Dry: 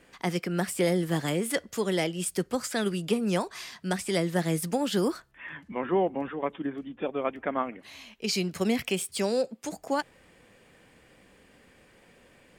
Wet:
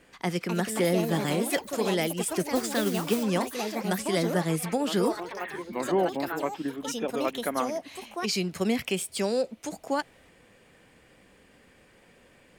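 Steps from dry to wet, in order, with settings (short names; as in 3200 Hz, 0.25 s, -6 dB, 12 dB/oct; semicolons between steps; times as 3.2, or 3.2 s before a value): echoes that change speed 0.304 s, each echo +4 st, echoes 3, each echo -6 dB; 2.55–3.23 modulation noise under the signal 13 dB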